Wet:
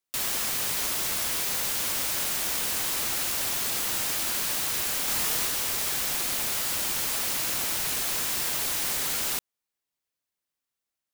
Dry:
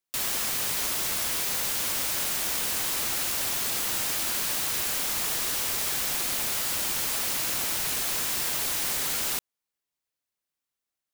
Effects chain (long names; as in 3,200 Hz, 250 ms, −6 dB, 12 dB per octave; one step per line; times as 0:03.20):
0:05.05–0:05.47: double-tracking delay 26 ms −3 dB